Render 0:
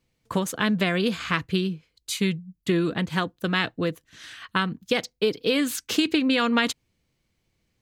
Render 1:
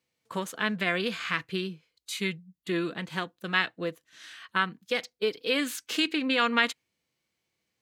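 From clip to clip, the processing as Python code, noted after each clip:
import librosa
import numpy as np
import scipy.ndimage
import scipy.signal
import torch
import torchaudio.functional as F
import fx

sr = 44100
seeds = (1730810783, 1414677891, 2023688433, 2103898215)

y = fx.highpass(x, sr, hz=500.0, slope=6)
y = fx.hpss(y, sr, part='harmonic', gain_db=8)
y = fx.dynamic_eq(y, sr, hz=2000.0, q=1.2, threshold_db=-34.0, ratio=4.0, max_db=5)
y = F.gain(torch.from_numpy(y), -8.5).numpy()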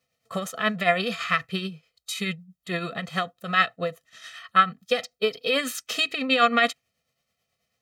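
y = x + 0.93 * np.pad(x, (int(1.6 * sr / 1000.0), 0))[:len(x)]
y = fx.small_body(y, sr, hz=(270.0, 690.0, 1300.0), ring_ms=45, db=7)
y = fx.tremolo_shape(y, sr, shape='triangle', hz=9.2, depth_pct=55)
y = F.gain(torch.from_numpy(y), 3.5).numpy()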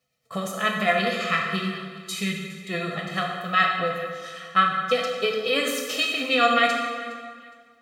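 y = fx.echo_feedback(x, sr, ms=413, feedback_pct=27, wet_db=-19)
y = fx.rev_plate(y, sr, seeds[0], rt60_s=1.7, hf_ratio=0.7, predelay_ms=0, drr_db=-0.5)
y = F.gain(torch.from_numpy(y), -1.5).numpy()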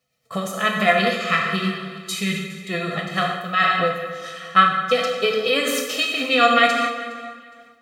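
y = fx.am_noise(x, sr, seeds[1], hz=5.7, depth_pct=55)
y = F.gain(torch.from_numpy(y), 7.0).numpy()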